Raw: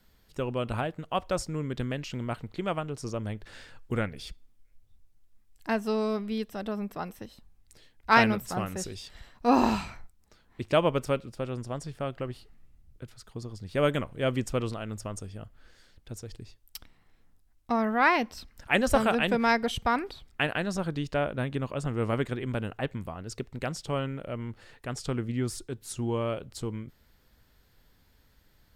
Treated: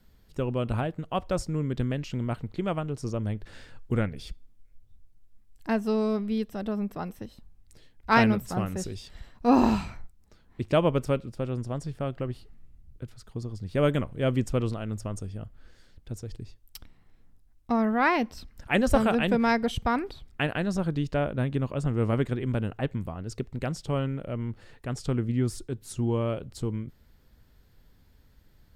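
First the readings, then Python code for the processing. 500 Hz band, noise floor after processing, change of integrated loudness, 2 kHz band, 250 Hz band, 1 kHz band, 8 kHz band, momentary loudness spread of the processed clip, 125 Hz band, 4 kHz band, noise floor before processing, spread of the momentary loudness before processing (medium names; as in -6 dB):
+1.0 dB, -60 dBFS, +1.5 dB, -2.0 dB, +3.5 dB, -1.0 dB, -2.5 dB, 16 LU, +5.0 dB, -2.5 dB, -64 dBFS, 19 LU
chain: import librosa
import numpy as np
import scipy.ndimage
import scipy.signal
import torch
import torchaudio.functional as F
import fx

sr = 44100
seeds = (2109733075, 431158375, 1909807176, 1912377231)

y = fx.low_shelf(x, sr, hz=440.0, db=8.0)
y = F.gain(torch.from_numpy(y), -2.5).numpy()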